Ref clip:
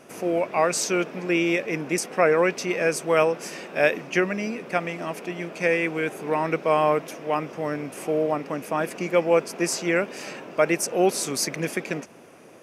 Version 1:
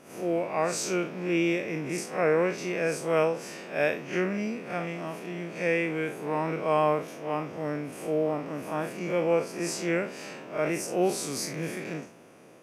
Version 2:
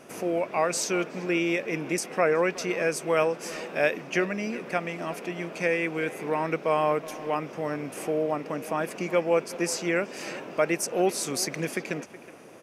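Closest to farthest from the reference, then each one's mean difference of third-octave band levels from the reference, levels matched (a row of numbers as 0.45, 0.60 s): 2, 1; 1.5, 2.5 dB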